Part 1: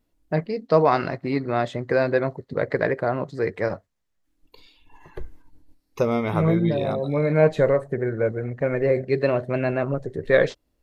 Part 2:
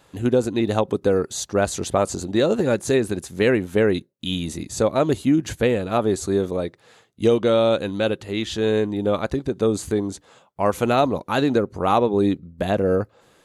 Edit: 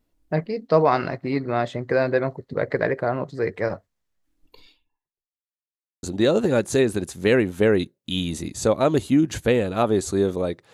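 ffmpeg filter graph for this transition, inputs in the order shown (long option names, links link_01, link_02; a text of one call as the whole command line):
ffmpeg -i cue0.wav -i cue1.wav -filter_complex "[0:a]apad=whole_dur=10.73,atrim=end=10.73,asplit=2[link_01][link_02];[link_01]atrim=end=5.43,asetpts=PTS-STARTPTS,afade=type=out:start_time=4.71:duration=0.72:curve=exp[link_03];[link_02]atrim=start=5.43:end=6.03,asetpts=PTS-STARTPTS,volume=0[link_04];[1:a]atrim=start=2.18:end=6.88,asetpts=PTS-STARTPTS,afade=type=in:duration=0.004:curve=hsin[link_05];[link_03][link_04][link_05]concat=n=3:v=0:a=1" out.wav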